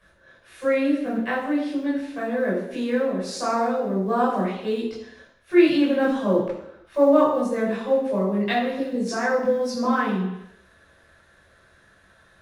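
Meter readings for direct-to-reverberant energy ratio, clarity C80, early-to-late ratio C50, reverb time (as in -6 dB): -7.5 dB, 6.0 dB, 3.5 dB, 0.80 s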